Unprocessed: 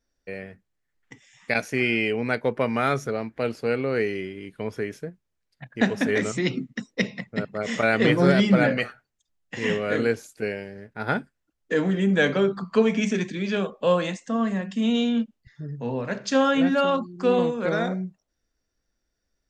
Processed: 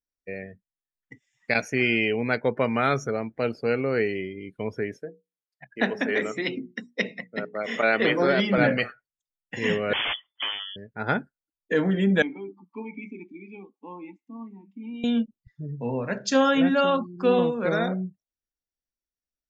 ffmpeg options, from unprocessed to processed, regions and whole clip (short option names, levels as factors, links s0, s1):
-filter_complex "[0:a]asettb=1/sr,asplit=3[s0][s1][s2];[s0]atrim=end=4.984[s3];[s1]atrim=start=4.98:end=8.58,asetpts=PTS-STARTPTS,afade=t=in:d=0.004:c=qsin,afade=t=out:st=3.596:d=0.004:c=qsin,highpass=270,acrossover=split=4400[s4][s5];[s5]acompressor=threshold=0.00355:ratio=4:attack=1:release=60[s6];[s4][s6]amix=inputs=2:normalize=0,bandreject=f=60:t=h:w=6,bandreject=f=120:t=h:w=6,bandreject=f=180:t=h:w=6,bandreject=f=240:t=h:w=6,bandreject=f=300:t=h:w=6,bandreject=f=360:t=h:w=6,bandreject=f=420:t=h:w=6,bandreject=f=480:t=h:w=6[s7];[s2]atrim=start=8.576[s8];[s3][s7]acrossfade=d=0.004:c1=hsin:c2=qsin[s9];[s9][s8]acrossfade=d=0.004:c1=qsin:c2=hsin,asettb=1/sr,asplit=3[s10][s11][s12];[s10]atrim=end=9.934[s13];[s11]atrim=start=9.93:end=10.76,asetpts=PTS-STARTPTS,afade=t=in:d=0.004:c=qsin,afade=t=out:st=0.826:d=0.004:c=qsin,asubboost=boost=7:cutoff=110,aeval=exprs='(mod(11.9*val(0)+1,2)-1)/11.9':c=same,lowpass=f=3000:t=q:w=0.5098,lowpass=f=3000:t=q:w=0.6013,lowpass=f=3000:t=q:w=0.9,lowpass=f=3000:t=q:w=2.563,afreqshift=-3500[s14];[s12]atrim=start=10.756[s15];[s13][s14]acrossfade=d=0.004:c1=hsin:c2=qsin[s16];[s16][s15]acrossfade=d=0.004:c1=qsin:c2=hsin,asettb=1/sr,asplit=3[s17][s18][s19];[s17]atrim=end=12.224[s20];[s18]atrim=start=12.22:end=15.04,asetpts=PTS-STARTPTS,afade=t=in:d=0.004:c=qsin,afade=t=out:st=2.816:d=0.004:c=qsin,asplit=3[s21][s22][s23];[s21]bandpass=f=300:t=q:w=8,volume=1[s24];[s22]bandpass=f=870:t=q:w=8,volume=0.501[s25];[s23]bandpass=f=2240:t=q:w=8,volume=0.355[s26];[s24][s25][s26]amix=inputs=3:normalize=0,equalizer=f=150:w=1.3:g=-4.5[s27];[s19]atrim=start=15.036[s28];[s20][s27]acrossfade=d=0.004:c1=hsin:c2=qsin[s29];[s29][s28]acrossfade=d=0.004:c1=qsin:c2=hsin,afftdn=nr=21:nf=-43,highshelf=f=6000:g=6"